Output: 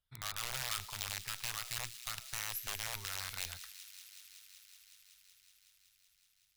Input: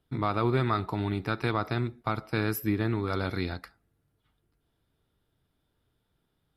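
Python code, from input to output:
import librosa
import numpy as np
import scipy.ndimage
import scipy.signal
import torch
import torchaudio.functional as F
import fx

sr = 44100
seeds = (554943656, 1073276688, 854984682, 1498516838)

y = (np.mod(10.0 ** (21.0 / 20.0) * x + 1.0, 2.0) - 1.0) / 10.0 ** (21.0 / 20.0)
y = fx.tone_stack(y, sr, knobs='10-0-10')
y = fx.echo_wet_highpass(y, sr, ms=187, feedback_pct=84, hz=3000.0, wet_db=-12)
y = y * librosa.db_to_amplitude(-5.0)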